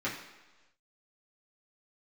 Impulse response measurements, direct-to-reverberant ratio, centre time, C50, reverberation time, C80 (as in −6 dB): −8.5 dB, 35 ms, 6.0 dB, 1.2 s, 8.5 dB